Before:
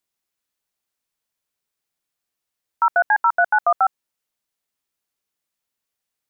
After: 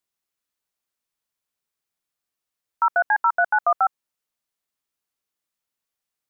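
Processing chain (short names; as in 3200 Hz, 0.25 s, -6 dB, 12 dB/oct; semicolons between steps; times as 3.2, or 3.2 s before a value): bell 1200 Hz +2 dB 0.41 oct; gain -3 dB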